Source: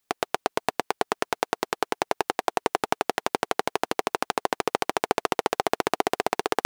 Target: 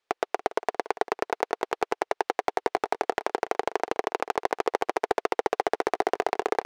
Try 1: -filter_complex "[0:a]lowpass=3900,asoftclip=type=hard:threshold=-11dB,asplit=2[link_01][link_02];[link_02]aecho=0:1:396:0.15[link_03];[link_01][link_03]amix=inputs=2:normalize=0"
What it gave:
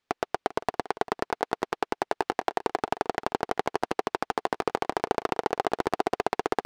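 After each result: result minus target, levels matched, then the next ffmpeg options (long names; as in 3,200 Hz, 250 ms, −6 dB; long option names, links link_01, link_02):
echo 111 ms late; 250 Hz band +3.5 dB
-filter_complex "[0:a]lowpass=3900,asoftclip=type=hard:threshold=-11dB,asplit=2[link_01][link_02];[link_02]aecho=0:1:285:0.15[link_03];[link_01][link_03]amix=inputs=2:normalize=0"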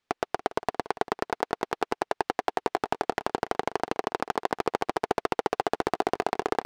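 250 Hz band +3.5 dB
-filter_complex "[0:a]lowpass=3900,lowshelf=frequency=300:width_type=q:width=1.5:gain=-10.5,asoftclip=type=hard:threshold=-11dB,asplit=2[link_01][link_02];[link_02]aecho=0:1:285:0.15[link_03];[link_01][link_03]amix=inputs=2:normalize=0"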